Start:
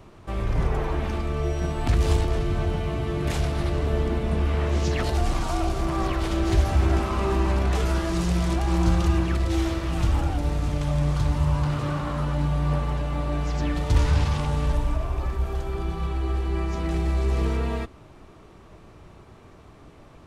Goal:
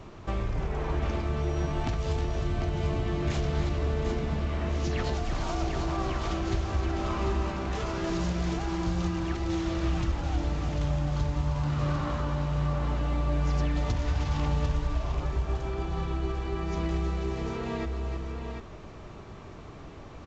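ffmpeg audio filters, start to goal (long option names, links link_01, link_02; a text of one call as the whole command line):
ffmpeg -i in.wav -af "acompressor=threshold=-29dB:ratio=6,aecho=1:1:314|746:0.355|0.473,volume=2.5dB" -ar 16000 -c:a pcm_alaw out.wav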